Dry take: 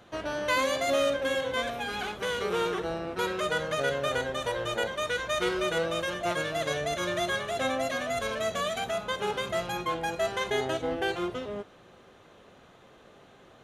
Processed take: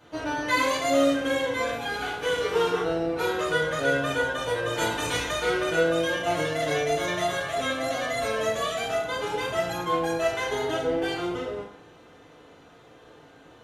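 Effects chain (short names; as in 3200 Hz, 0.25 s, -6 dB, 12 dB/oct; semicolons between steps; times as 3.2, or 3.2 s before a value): 4.74–5.3 spectral limiter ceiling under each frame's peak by 19 dB; FDN reverb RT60 0.67 s, low-frequency decay 0.85×, high-frequency decay 0.8×, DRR -8 dB; gain -5.5 dB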